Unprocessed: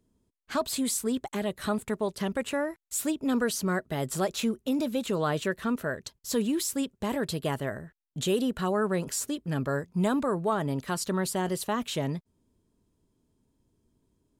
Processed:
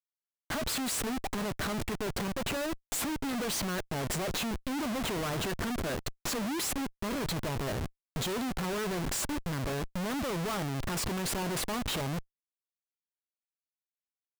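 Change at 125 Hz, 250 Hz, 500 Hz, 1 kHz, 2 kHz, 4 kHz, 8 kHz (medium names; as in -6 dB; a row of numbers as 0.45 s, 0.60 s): -2.0 dB, -5.5 dB, -6.0 dB, -3.0 dB, -1.0 dB, +1.0 dB, -1.5 dB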